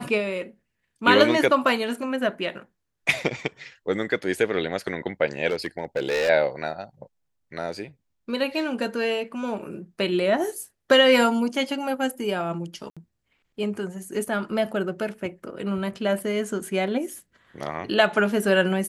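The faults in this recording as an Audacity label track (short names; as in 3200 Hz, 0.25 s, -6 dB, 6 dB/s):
5.500000	6.300000	clipped -20 dBFS
12.900000	12.970000	gap 66 ms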